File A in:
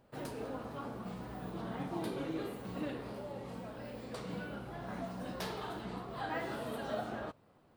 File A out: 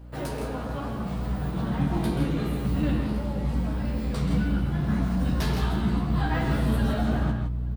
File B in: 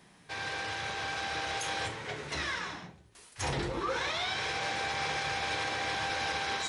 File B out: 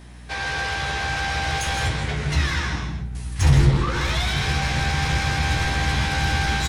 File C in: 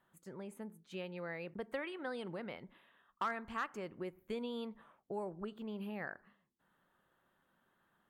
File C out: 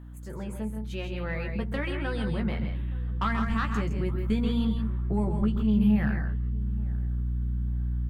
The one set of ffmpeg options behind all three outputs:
-filter_complex "[0:a]asplit=2[s0][s1];[s1]aecho=0:1:131.2|163.3:0.316|0.398[s2];[s0][s2]amix=inputs=2:normalize=0,aeval=exprs='0.106*(cos(1*acos(clip(val(0)/0.106,-1,1)))-cos(1*PI/2))+0.0473*(cos(5*acos(clip(val(0)/0.106,-1,1)))-cos(5*PI/2))+0.00944*(cos(7*acos(clip(val(0)/0.106,-1,1)))-cos(7*PI/2))':c=same,asplit=2[s3][s4];[s4]adelay=14,volume=0.531[s5];[s3][s5]amix=inputs=2:normalize=0,aeval=exprs='val(0)+0.00708*(sin(2*PI*60*n/s)+sin(2*PI*2*60*n/s)/2+sin(2*PI*3*60*n/s)/3+sin(2*PI*4*60*n/s)/4+sin(2*PI*5*60*n/s)/5)':c=same,asplit=2[s6][s7];[s7]adelay=873,lowpass=f=1200:p=1,volume=0.1,asplit=2[s8][s9];[s9]adelay=873,lowpass=f=1200:p=1,volume=0.4,asplit=2[s10][s11];[s11]adelay=873,lowpass=f=1200:p=1,volume=0.4[s12];[s8][s10][s12]amix=inputs=3:normalize=0[s13];[s6][s13]amix=inputs=2:normalize=0,asubboost=boost=9:cutoff=170"

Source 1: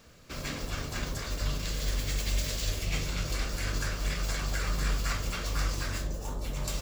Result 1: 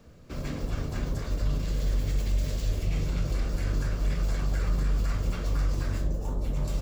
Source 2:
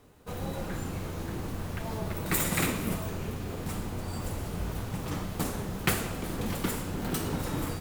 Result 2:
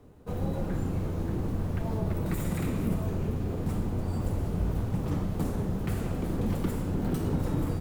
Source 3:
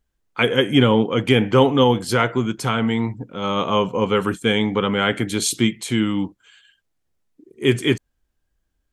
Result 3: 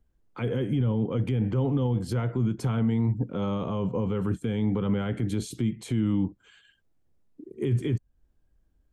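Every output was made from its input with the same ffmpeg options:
-filter_complex "[0:a]acrossover=split=150[s0][s1];[s1]acompressor=threshold=0.0251:ratio=2.5[s2];[s0][s2]amix=inputs=2:normalize=0,alimiter=limit=0.075:level=0:latency=1:release=29,tiltshelf=f=910:g=7,volume=0.891"

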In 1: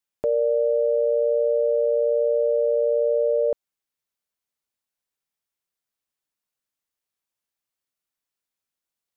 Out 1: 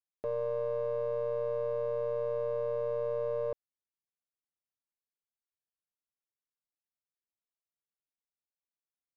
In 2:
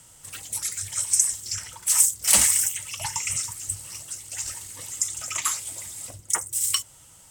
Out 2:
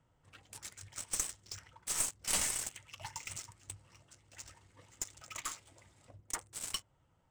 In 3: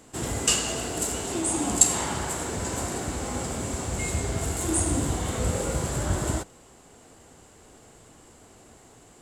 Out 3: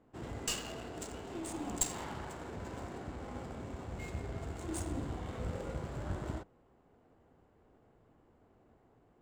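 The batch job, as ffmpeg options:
-af "adynamicsmooth=sensitivity=5:basefreq=1500,aeval=exprs='(tanh(3.55*val(0)+0.6)-tanh(0.6))/3.55':c=same,volume=0.355"

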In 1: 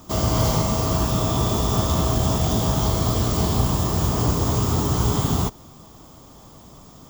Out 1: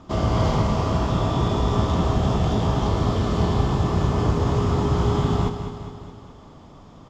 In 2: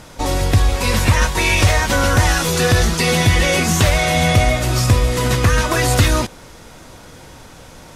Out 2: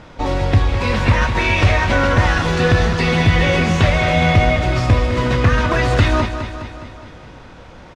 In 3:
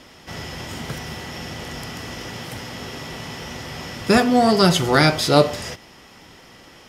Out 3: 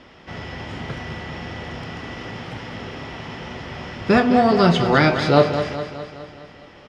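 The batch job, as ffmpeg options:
-filter_complex "[0:a]lowpass=3100,asplit=2[s0][s1];[s1]adelay=29,volume=0.224[s2];[s0][s2]amix=inputs=2:normalize=0,asplit=2[s3][s4];[s4]aecho=0:1:207|414|621|828|1035|1242|1449:0.335|0.191|0.109|0.062|0.0354|0.0202|0.0115[s5];[s3][s5]amix=inputs=2:normalize=0"

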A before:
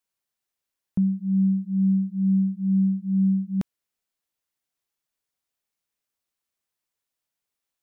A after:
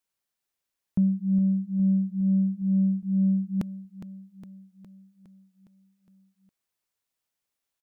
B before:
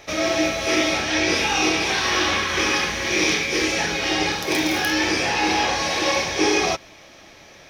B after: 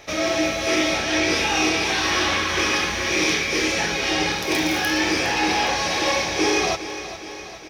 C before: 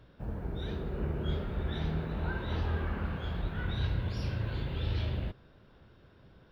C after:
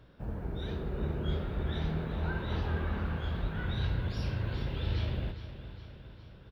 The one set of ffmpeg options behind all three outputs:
-af "asoftclip=type=tanh:threshold=0.299,aecho=1:1:411|822|1233|1644|2055|2466|2877:0.237|0.142|0.0854|0.0512|0.0307|0.0184|0.0111"

